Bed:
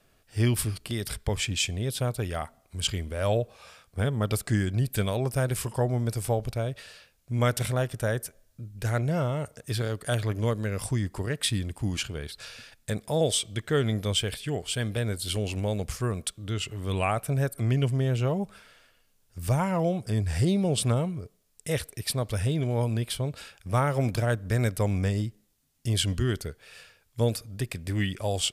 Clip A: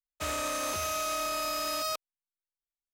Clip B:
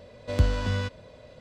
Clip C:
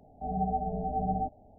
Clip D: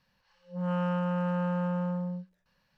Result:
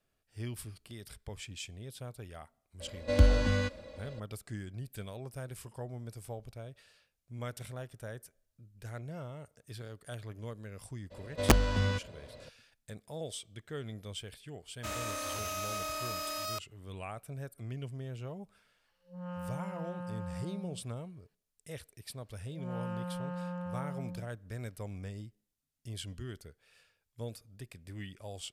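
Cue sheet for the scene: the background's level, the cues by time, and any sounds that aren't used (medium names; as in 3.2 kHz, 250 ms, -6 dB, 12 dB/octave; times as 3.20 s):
bed -16 dB
2.80 s: add B -2 dB + comb 3.6 ms, depth 75%
11.10 s: add B -2 dB, fades 0.02 s + integer overflow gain 11 dB
14.63 s: add A -5.5 dB
18.58 s: add D -11.5 dB
22.03 s: add D -9.5 dB
not used: C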